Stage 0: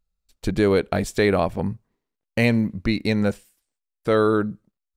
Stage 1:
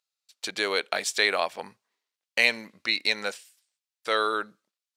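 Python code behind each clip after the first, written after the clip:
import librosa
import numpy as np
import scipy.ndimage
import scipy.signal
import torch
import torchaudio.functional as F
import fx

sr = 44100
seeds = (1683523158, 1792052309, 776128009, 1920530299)

y = scipy.signal.sosfilt(scipy.signal.butter(2, 650.0, 'highpass', fs=sr, output='sos'), x)
y = fx.peak_eq(y, sr, hz=4400.0, db=11.5, octaves=2.7)
y = y * 10.0 ** (-4.0 / 20.0)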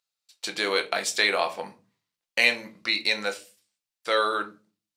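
y = fx.room_shoebox(x, sr, seeds[0], volume_m3=130.0, walls='furnished', distance_m=0.82)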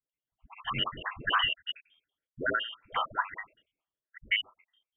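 y = fx.spec_dropout(x, sr, seeds[1], share_pct=64)
y = fx.freq_invert(y, sr, carrier_hz=3400)
y = fx.dispersion(y, sr, late='highs', ms=98.0, hz=530.0)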